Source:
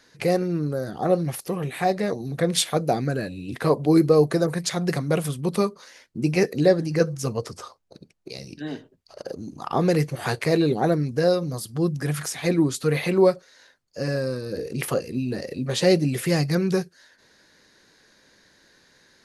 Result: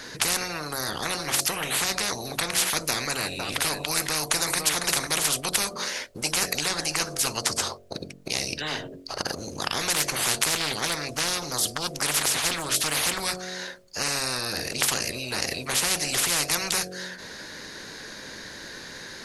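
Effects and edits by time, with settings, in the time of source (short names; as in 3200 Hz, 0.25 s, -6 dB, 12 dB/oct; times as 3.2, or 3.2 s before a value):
2.89–5.07 echo 0.502 s -14.5 dB
9.95–13.2 Doppler distortion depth 0.2 ms
whole clip: dynamic EQ 6600 Hz, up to +5 dB, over -46 dBFS, Q 1; de-hum 45.76 Hz, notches 16; spectral compressor 10:1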